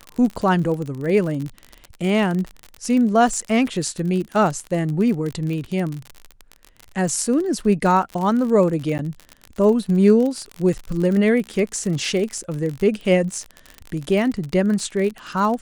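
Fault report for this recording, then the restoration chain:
crackle 44/s -25 dBFS
8.98–8.99 gap 9.6 ms
12.43–12.44 gap 8.4 ms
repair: de-click; interpolate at 8.98, 9.6 ms; interpolate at 12.43, 8.4 ms

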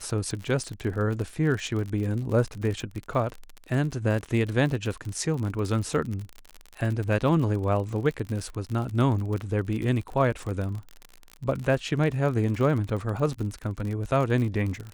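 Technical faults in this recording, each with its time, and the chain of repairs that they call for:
crackle 47/s -31 dBFS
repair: de-click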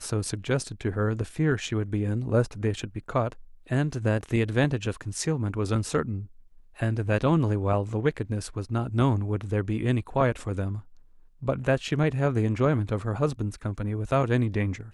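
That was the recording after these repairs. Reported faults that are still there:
none

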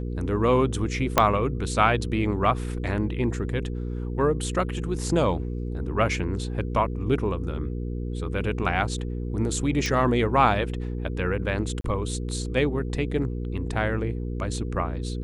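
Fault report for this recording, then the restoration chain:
hum 60 Hz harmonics 8 -30 dBFS
1.18 pop -2 dBFS
9.86 pop
11.81–11.84 gap 33 ms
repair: de-click; de-hum 60 Hz, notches 8; interpolate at 11.81, 33 ms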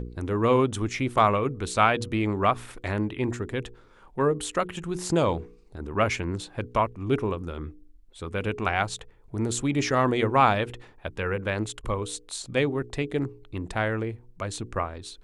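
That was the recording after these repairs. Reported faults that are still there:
1.18 pop

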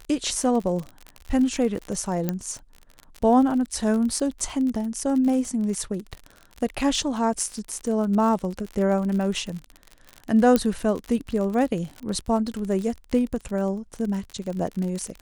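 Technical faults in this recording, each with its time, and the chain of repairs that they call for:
crackle 47/s -29 dBFS
2.29 pop -11 dBFS
10.56 pop -7 dBFS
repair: de-click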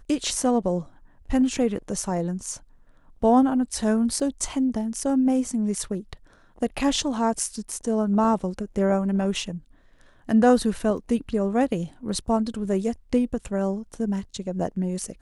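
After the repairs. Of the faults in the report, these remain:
none

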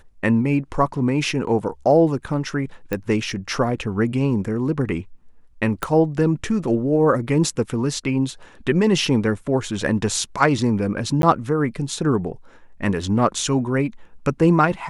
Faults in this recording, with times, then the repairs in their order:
2.93 pop -11 dBFS
5.83 pop -8 dBFS
11.22–11.23 gap 12 ms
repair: de-click; interpolate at 11.22, 12 ms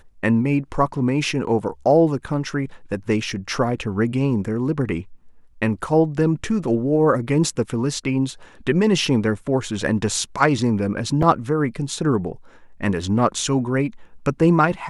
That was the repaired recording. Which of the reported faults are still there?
5.83 pop

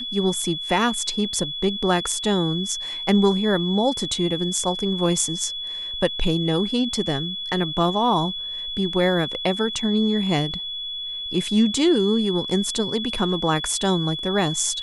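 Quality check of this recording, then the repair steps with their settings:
tone 3400 Hz -28 dBFS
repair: notch 3400 Hz, Q 30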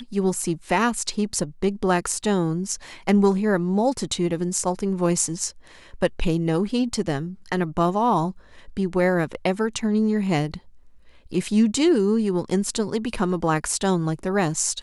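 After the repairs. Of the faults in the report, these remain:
none

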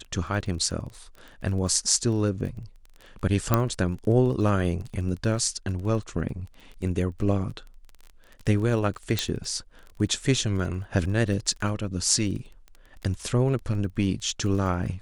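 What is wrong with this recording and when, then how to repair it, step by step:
crackle 20/s -34 dBFS
3.54 pop -6 dBFS
9.19 pop -9 dBFS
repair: de-click

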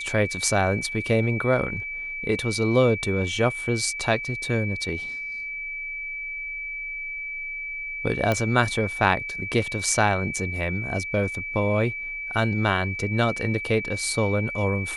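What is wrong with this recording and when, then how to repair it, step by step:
tone 2300 Hz -30 dBFS
8.32 pop -10 dBFS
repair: de-click; notch 2300 Hz, Q 30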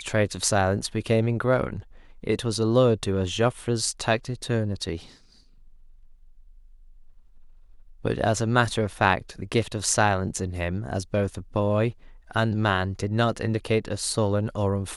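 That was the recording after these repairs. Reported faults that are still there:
none

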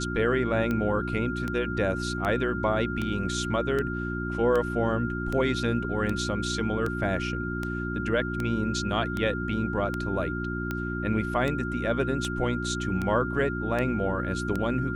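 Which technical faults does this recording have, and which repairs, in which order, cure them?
hum 60 Hz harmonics 6 -32 dBFS
tick 78 rpm -17 dBFS
tone 1400 Hz -34 dBFS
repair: de-click; notch 1400 Hz, Q 30; de-hum 60 Hz, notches 6

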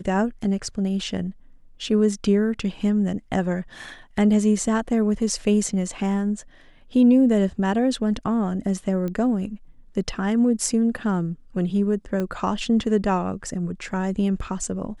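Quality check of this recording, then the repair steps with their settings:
9.08 pop -18 dBFS
12.2 pop -15 dBFS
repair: de-click

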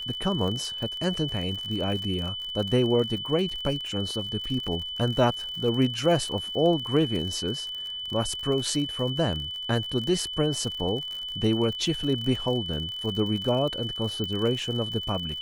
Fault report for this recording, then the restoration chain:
crackle 59/s -32 dBFS
tone 3000 Hz -32 dBFS
14.24 pop -19 dBFS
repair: de-click; notch 3000 Hz, Q 30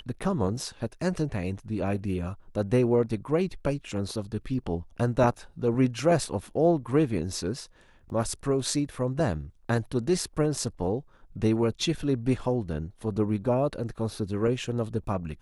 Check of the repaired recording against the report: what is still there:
14.24 pop

